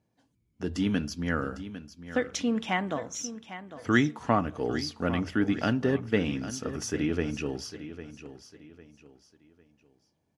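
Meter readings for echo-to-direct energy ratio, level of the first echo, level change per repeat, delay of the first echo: -12.5 dB, -13.0 dB, -9.5 dB, 802 ms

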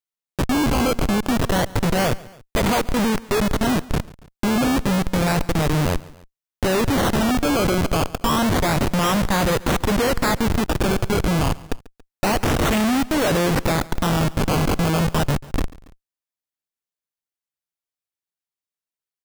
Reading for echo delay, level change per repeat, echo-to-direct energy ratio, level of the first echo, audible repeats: 140 ms, -5.0 dB, -20.0 dB, -21.0 dB, 2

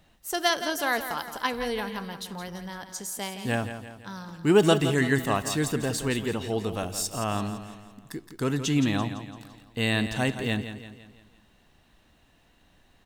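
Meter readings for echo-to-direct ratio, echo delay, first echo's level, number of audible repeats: -9.5 dB, 169 ms, -10.5 dB, 4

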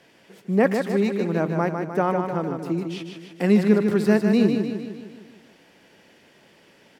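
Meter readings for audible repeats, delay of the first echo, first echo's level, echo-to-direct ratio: 6, 152 ms, -6.0 dB, -4.5 dB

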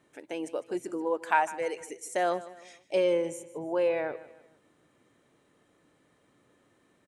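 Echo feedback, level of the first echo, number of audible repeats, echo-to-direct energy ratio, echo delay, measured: 41%, -17.0 dB, 3, -16.0 dB, 153 ms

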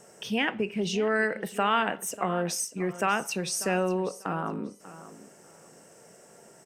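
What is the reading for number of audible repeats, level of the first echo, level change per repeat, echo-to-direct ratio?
2, -16.0 dB, -13.0 dB, -16.0 dB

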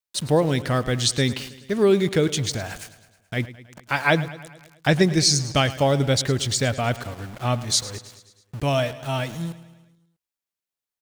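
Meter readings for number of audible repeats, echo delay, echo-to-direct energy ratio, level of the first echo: 5, 107 ms, -14.5 dB, -16.5 dB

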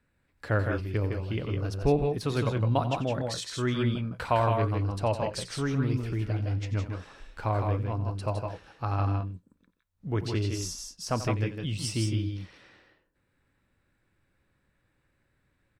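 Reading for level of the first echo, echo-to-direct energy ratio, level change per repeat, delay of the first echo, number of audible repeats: -13.0 dB, -3.5 dB, no regular repeats, 89 ms, 2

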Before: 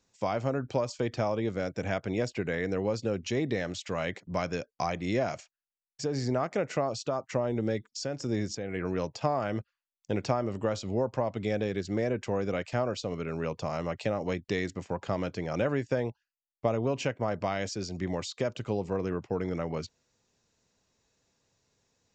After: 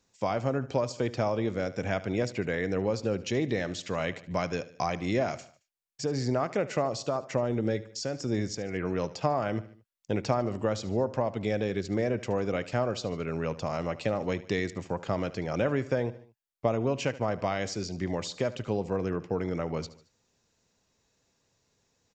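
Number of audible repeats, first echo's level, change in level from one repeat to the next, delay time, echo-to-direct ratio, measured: 3, -17.0 dB, -6.0 dB, 74 ms, -16.0 dB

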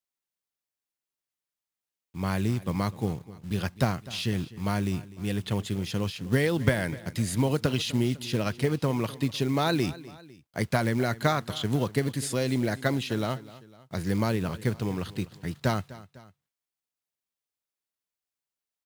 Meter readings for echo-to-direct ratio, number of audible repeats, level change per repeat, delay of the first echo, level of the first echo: -17.5 dB, 2, -5.5 dB, 251 ms, -18.5 dB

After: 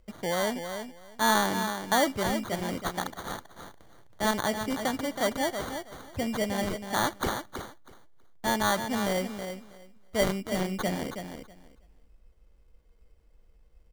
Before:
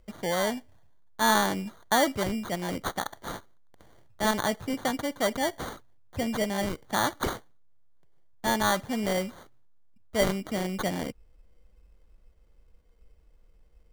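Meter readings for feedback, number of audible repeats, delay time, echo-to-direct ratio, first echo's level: 17%, 2, 323 ms, -8.0 dB, -8.0 dB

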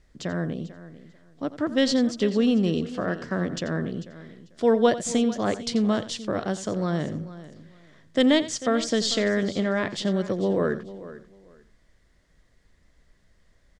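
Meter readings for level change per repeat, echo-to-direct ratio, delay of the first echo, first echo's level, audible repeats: no regular repeats, -12.5 dB, 87 ms, -15.0 dB, 4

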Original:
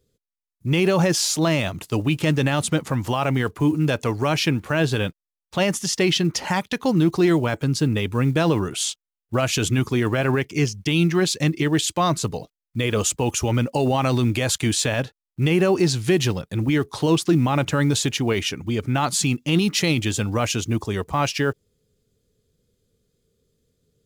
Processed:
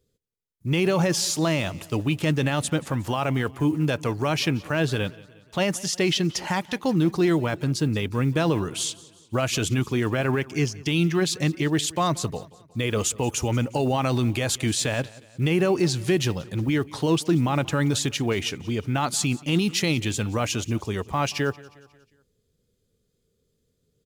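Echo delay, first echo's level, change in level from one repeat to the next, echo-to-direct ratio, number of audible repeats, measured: 180 ms, -21.5 dB, -6.0 dB, -20.5 dB, 3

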